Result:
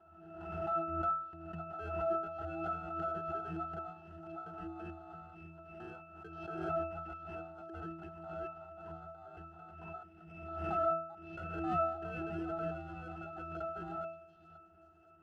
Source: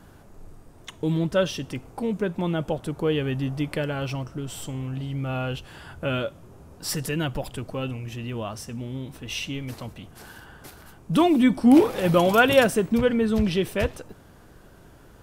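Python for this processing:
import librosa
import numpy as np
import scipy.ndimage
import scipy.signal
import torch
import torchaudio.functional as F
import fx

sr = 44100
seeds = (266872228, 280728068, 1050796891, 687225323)

p1 = fx.block_reorder(x, sr, ms=223.0, group=3)
p2 = fx.highpass(p1, sr, hz=320.0, slope=6)
p3 = fx.high_shelf(p2, sr, hz=2600.0, db=-8.0)
p4 = fx.over_compress(p3, sr, threshold_db=-27.0, ratio=-1.0)
p5 = p3 + (p4 * librosa.db_to_amplitude(-1.0))
p6 = fx.sample_hold(p5, sr, seeds[0], rate_hz=2800.0, jitter_pct=0)
p7 = np.clip(p6, -10.0 ** (-21.5 / 20.0), 10.0 ** (-21.5 / 20.0))
p8 = p7 * np.sin(2.0 * np.pi * 1000.0 * np.arange(len(p7)) / sr)
p9 = fx.octave_resonator(p8, sr, note='E', decay_s=0.57)
p10 = fx.echo_stepped(p9, sr, ms=528, hz=4300.0, octaves=0.7, feedback_pct=70, wet_db=-9.0)
p11 = fx.pre_swell(p10, sr, db_per_s=43.0)
y = p11 * librosa.db_to_amplitude(8.0)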